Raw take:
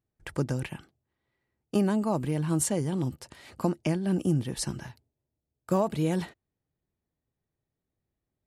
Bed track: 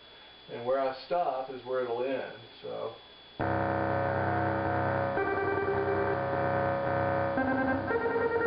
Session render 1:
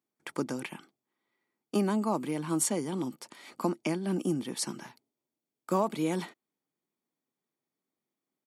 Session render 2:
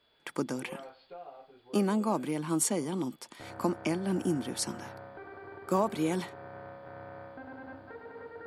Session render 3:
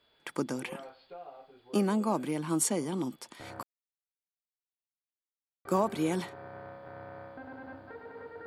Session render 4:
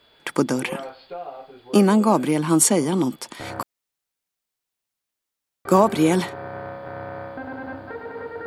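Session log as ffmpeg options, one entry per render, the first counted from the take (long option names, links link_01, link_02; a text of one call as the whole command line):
ffmpeg -i in.wav -af "highpass=frequency=220:width=0.5412,highpass=frequency=220:width=1.3066,aecho=1:1:0.9:0.32" out.wav
ffmpeg -i in.wav -i bed.wav -filter_complex "[1:a]volume=-17dB[link_01];[0:a][link_01]amix=inputs=2:normalize=0" out.wav
ffmpeg -i in.wav -filter_complex "[0:a]asplit=3[link_01][link_02][link_03];[link_01]atrim=end=3.63,asetpts=PTS-STARTPTS,afade=type=out:start_time=3.626:duration=0.004:curve=hsin[link_04];[link_02]atrim=start=3.63:end=5.65,asetpts=PTS-STARTPTS,volume=0[link_05];[link_03]atrim=start=5.65,asetpts=PTS-STARTPTS,afade=type=in:duration=0.004:curve=hsin[link_06];[link_04][link_05][link_06]concat=n=3:v=0:a=1" out.wav
ffmpeg -i in.wav -af "volume=12dB" out.wav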